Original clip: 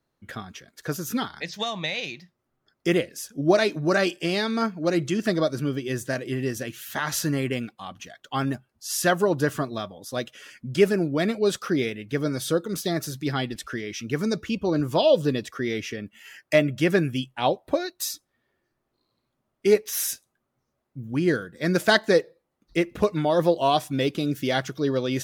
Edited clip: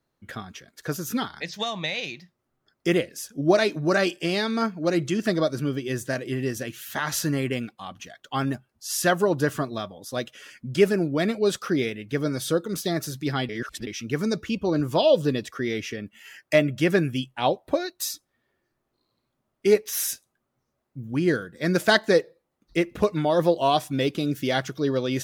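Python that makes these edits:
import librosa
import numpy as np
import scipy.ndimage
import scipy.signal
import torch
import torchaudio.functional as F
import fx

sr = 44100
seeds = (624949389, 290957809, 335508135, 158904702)

y = fx.edit(x, sr, fx.reverse_span(start_s=13.49, length_s=0.38), tone=tone)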